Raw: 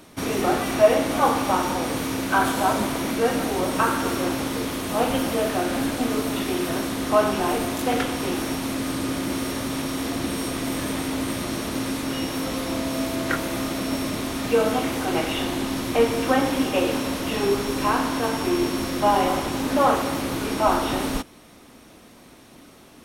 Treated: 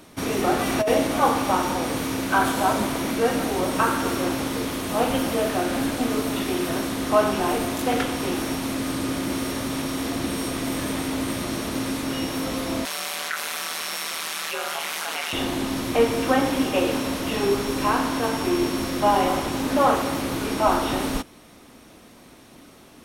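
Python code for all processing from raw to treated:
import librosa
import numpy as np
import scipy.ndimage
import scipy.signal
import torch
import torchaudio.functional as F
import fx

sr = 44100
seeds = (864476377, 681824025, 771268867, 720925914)

y = fx.chain(x, sr, fx.dynamic_eq(hz=1300.0, q=0.99, threshold_db=-28.0, ratio=4.0, max_db=-4),
    fx.over_compress(threshold_db=-19.0, ratio=-1.0), at=(0.59, 1.07))
y = fx.chain(y, sr, fx.highpass(hz=1200.0, slope=12),
    fx.ring_mod(carrier_hz=79.0),
    fx.env_flatten(amount_pct=70), at=(12.85, 15.33))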